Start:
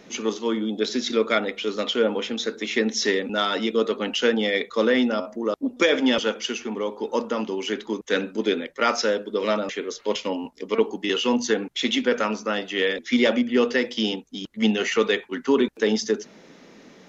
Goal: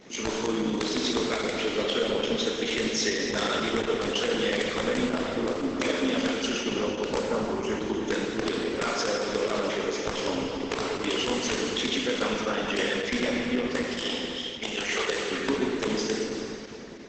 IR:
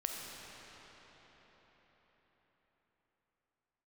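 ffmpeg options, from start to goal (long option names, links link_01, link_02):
-filter_complex "[0:a]asplit=3[link_01][link_02][link_03];[link_01]afade=type=out:start_time=7.09:duration=0.02[link_04];[link_02]equalizer=frequency=3600:width_type=o:width=0.77:gain=-14,afade=type=in:start_time=7.09:duration=0.02,afade=type=out:start_time=7.75:duration=0.02[link_05];[link_03]afade=type=in:start_time=7.75:duration=0.02[link_06];[link_04][link_05][link_06]amix=inputs=3:normalize=0,asplit=3[link_07][link_08][link_09];[link_07]afade=type=out:start_time=13.82:duration=0.02[link_10];[link_08]highpass=550,afade=type=in:start_time=13.82:duration=0.02,afade=type=out:start_time=15.08:duration=0.02[link_11];[link_09]afade=type=in:start_time=15.08:duration=0.02[link_12];[link_10][link_11][link_12]amix=inputs=3:normalize=0,acompressor=threshold=-24dB:ratio=8,tremolo=f=59:d=0.519,aeval=exprs='(mod(8.41*val(0)+1,2)-1)/8.41':channel_layout=same[link_13];[1:a]atrim=start_sample=2205,asetrate=74970,aresample=44100[link_14];[link_13][link_14]afir=irnorm=-1:irlink=0,volume=7dB" -ar 48000 -c:a libopus -b:a 10k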